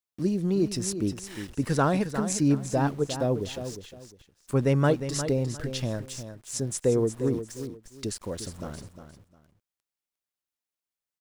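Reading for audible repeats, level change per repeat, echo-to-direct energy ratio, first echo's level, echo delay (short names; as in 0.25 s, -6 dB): 2, -12.5 dB, -10.0 dB, -10.0 dB, 0.355 s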